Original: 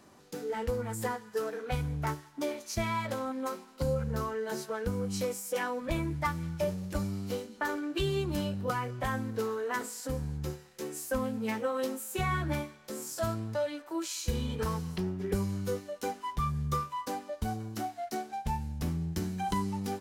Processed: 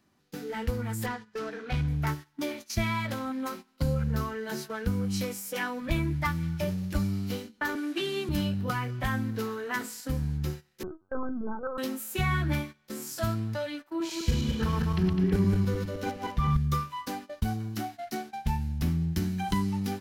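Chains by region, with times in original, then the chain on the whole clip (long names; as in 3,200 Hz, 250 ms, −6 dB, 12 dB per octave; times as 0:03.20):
0:01.06–0:01.88: low-pass filter 6,300 Hz + gain into a clipping stage and back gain 28.5 dB
0:07.75–0:08.29: linear delta modulator 64 kbit/s, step −46 dBFS + Butterworth high-pass 190 Hz 48 dB per octave + one half of a high-frequency compander decoder only
0:10.83–0:11.78: linear-phase brick-wall band-pass 210–1,600 Hz + linear-prediction vocoder at 8 kHz pitch kept
0:13.90–0:16.57: feedback delay that plays each chunk backwards 103 ms, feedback 62%, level −2.5 dB + high-shelf EQ 5,200 Hz −10.5 dB
whole clip: noise gate −42 dBFS, range −14 dB; octave-band graphic EQ 500/1,000/8,000 Hz −9/−5/−7 dB; level +6 dB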